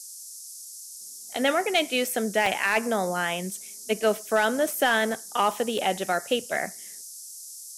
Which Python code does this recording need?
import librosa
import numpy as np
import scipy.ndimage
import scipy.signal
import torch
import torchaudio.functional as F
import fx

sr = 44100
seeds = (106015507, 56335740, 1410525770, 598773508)

y = fx.fix_declip(x, sr, threshold_db=-13.0)
y = fx.fix_interpolate(y, sr, at_s=(2.46, 5.78), length_ms=3.4)
y = fx.noise_reduce(y, sr, print_start_s=0.51, print_end_s=1.01, reduce_db=29.0)